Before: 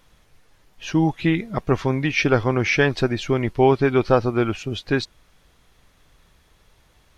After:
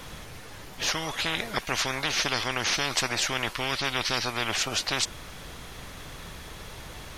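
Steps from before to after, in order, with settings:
every bin compressed towards the loudest bin 10 to 1
level −7 dB

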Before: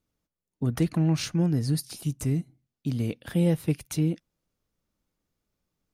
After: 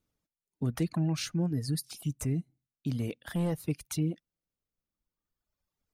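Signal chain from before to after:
reverb reduction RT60 1.8 s
in parallel at +3 dB: brickwall limiter −25 dBFS, peak gain reduction 10.5 dB
0:03.01–0:03.52: on the sum: gain into a clipping stage and back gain 17 dB
level −8.5 dB

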